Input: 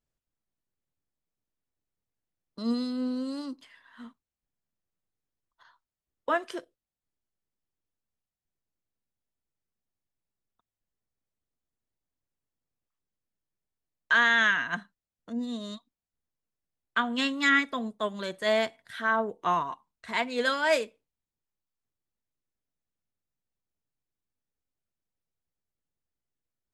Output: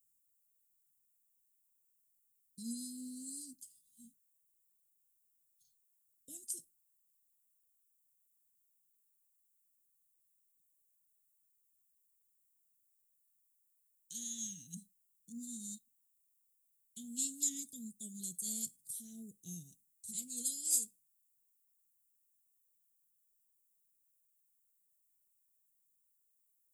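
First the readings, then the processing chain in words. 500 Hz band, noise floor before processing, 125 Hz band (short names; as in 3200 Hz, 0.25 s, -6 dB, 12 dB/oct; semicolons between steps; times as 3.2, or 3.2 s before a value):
under -35 dB, under -85 dBFS, -8.5 dB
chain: Chebyshev band-stop 170–7700 Hz, order 3; RIAA curve recording; gain +4 dB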